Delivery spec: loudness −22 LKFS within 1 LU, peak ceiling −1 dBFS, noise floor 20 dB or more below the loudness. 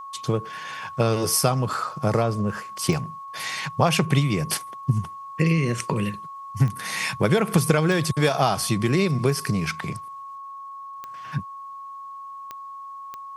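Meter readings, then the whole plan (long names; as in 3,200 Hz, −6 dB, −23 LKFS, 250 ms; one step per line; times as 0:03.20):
number of clicks 6; interfering tone 1,100 Hz; level of the tone −35 dBFS; integrated loudness −24.0 LKFS; sample peak −3.5 dBFS; target loudness −22.0 LKFS
→ click removal
notch filter 1,100 Hz, Q 30
level +2 dB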